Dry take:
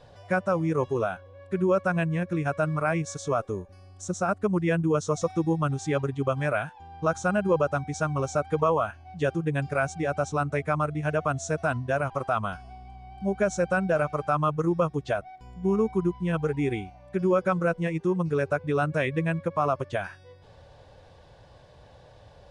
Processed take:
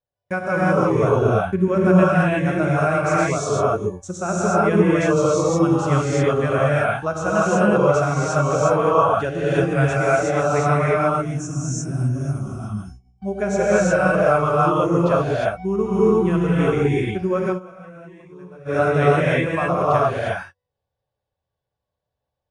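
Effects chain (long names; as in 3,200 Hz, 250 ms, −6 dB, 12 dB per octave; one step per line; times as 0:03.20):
noise gate −40 dBFS, range −39 dB
0:00.95–0:01.68: low-shelf EQ 270 Hz +9.5 dB
0:11.03–0:13.20: gain on a spectral selection 390–5,100 Hz −21 dB
reverb whose tail is shaped and stops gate 380 ms rising, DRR −8 dB
0:17.46–0:18.79: duck −23.5 dB, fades 0.14 s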